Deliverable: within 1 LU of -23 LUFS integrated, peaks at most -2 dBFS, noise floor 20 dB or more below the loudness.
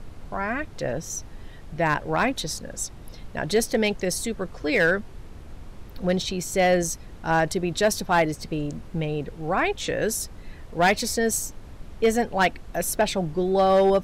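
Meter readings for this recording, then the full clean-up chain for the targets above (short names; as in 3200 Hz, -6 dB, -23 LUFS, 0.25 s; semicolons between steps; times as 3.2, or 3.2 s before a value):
clipped 0.5%; flat tops at -13.0 dBFS; noise floor -42 dBFS; noise floor target -45 dBFS; loudness -24.5 LUFS; peak -13.0 dBFS; loudness target -23.0 LUFS
-> clip repair -13 dBFS; noise print and reduce 6 dB; gain +1.5 dB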